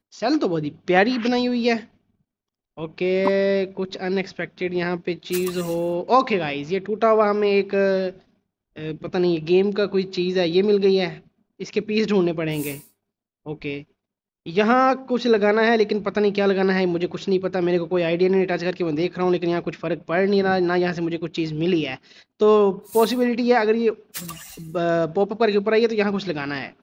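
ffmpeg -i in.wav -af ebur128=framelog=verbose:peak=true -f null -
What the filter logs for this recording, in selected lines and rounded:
Integrated loudness:
  I:         -21.3 LUFS
  Threshold: -31.9 LUFS
Loudness range:
  LRA:         3.9 LU
  Threshold: -42.0 LUFS
  LRA low:   -24.2 LUFS
  LRA high:  -20.4 LUFS
True peak:
  Peak:       -4.3 dBFS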